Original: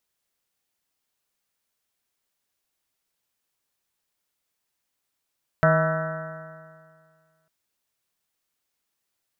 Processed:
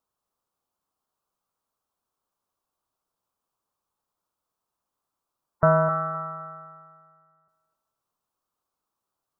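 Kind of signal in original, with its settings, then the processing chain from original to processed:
stretched partials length 1.85 s, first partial 158 Hz, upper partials -17/-12.5/1.5/-16.5/-12/-13/-4/-5/-14/-14 dB, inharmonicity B 0.0016, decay 1.99 s, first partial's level -18.5 dB
spectral gate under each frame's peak -20 dB strong; resonant high shelf 1.5 kHz -8.5 dB, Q 3; thinning echo 257 ms, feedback 25%, high-pass 380 Hz, level -9 dB

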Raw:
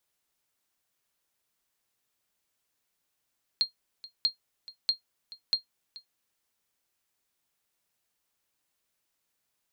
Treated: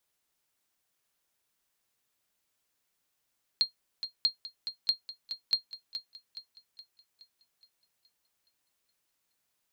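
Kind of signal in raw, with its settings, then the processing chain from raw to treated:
sonar ping 4.22 kHz, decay 0.12 s, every 0.64 s, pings 4, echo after 0.43 s, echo -19.5 dB -16 dBFS
thinning echo 420 ms, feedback 51%, level -11 dB

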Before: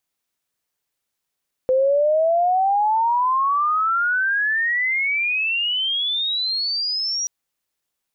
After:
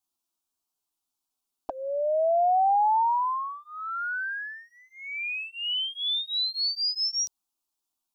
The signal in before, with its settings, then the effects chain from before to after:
sweep logarithmic 510 Hz -> 5.8 kHz -14 dBFS -> -21 dBFS 5.58 s
touch-sensitive flanger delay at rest 11.8 ms, full sweep at -16.5 dBFS; static phaser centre 510 Hz, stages 6

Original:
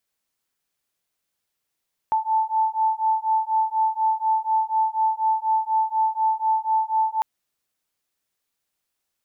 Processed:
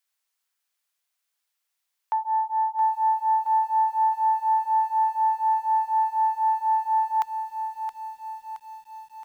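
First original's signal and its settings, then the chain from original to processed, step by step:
beating tones 878 Hz, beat 4.1 Hz, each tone -22 dBFS 5.10 s
tracing distortion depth 0.03 ms; high-pass 850 Hz 12 dB/octave; bit-crushed delay 671 ms, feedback 55%, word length 9-bit, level -9 dB

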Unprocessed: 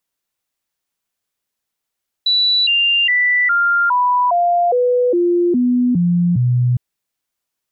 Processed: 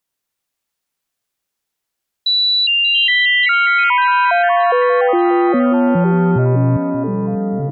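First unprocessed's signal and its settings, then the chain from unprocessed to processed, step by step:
stepped sine 3.95 kHz down, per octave 2, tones 11, 0.41 s, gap 0.00 s -11.5 dBFS
ever faster or slower copies 97 ms, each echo -4 st, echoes 3, each echo -6 dB; feedback delay 585 ms, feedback 51%, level -13.5 dB

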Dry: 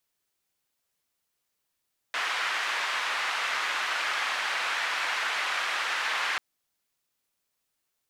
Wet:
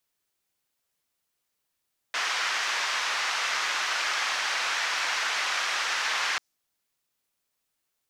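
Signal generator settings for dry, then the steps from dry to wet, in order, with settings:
noise band 1.3–1.8 kHz, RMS -29.5 dBFS 4.24 s
dynamic bell 5.8 kHz, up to +8 dB, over -52 dBFS, Q 1.4

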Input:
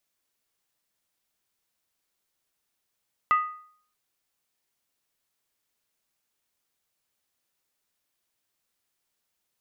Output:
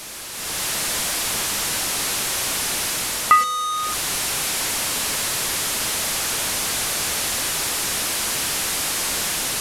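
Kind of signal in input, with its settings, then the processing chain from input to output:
skin hit, lowest mode 1.24 kHz, decay 0.56 s, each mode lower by 10.5 dB, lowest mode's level -15.5 dB
one-bit delta coder 64 kbps, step -28 dBFS; level rider gain up to 12 dB

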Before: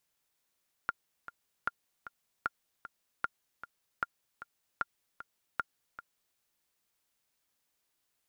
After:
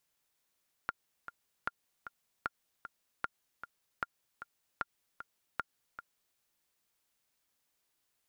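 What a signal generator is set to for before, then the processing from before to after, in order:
metronome 153 bpm, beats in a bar 2, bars 7, 1.4 kHz, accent 13.5 dB -17 dBFS
compression, threshold -32 dBFS

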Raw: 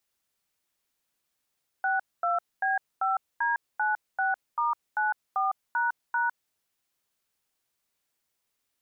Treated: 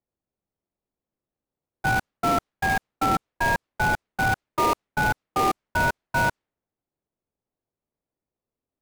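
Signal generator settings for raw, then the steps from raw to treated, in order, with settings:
DTMF "62B5D96*94##", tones 156 ms, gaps 235 ms, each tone -26 dBFS
level-controlled noise filter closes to 680 Hz, open at -23 dBFS; dynamic bell 1.2 kHz, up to +6 dB, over -40 dBFS, Q 1.5; in parallel at -3 dB: sample-rate reducer 1.6 kHz, jitter 20%

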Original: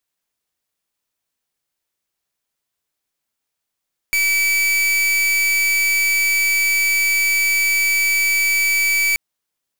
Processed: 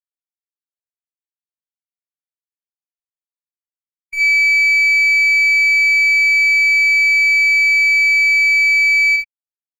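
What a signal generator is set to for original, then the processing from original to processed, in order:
pulse 2.3 kHz, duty 42% -17 dBFS 5.03 s
treble shelf 5.5 kHz -9 dB; gated-style reverb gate 90 ms rising, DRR -1 dB; spectral contrast expander 1.5:1

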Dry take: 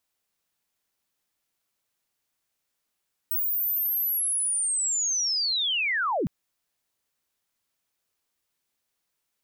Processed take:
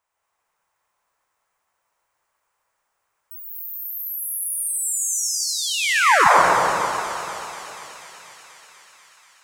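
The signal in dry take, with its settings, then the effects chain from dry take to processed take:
sweep linear 16 kHz -> 120 Hz -23.5 dBFS -> -23 dBFS 2.96 s
ten-band graphic EQ 250 Hz -10 dB, 500 Hz +4 dB, 1 kHz +11 dB, 2 kHz +4 dB, 4 kHz -7 dB, 8 kHz +3 dB, 16 kHz -11 dB; on a send: feedback echo behind a high-pass 243 ms, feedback 79%, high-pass 3.7 kHz, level -6.5 dB; on the sum: plate-style reverb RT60 3.3 s, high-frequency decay 0.45×, pre-delay 110 ms, DRR -5 dB

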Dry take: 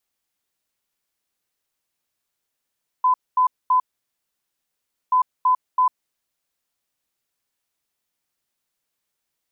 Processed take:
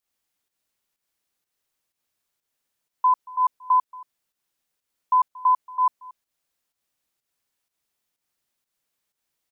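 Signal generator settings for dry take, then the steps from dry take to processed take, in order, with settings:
beep pattern sine 1.01 kHz, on 0.10 s, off 0.23 s, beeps 3, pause 1.32 s, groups 2, -13.5 dBFS
volume shaper 125 bpm, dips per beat 1, -9 dB, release 158 ms; delay 230 ms -22 dB

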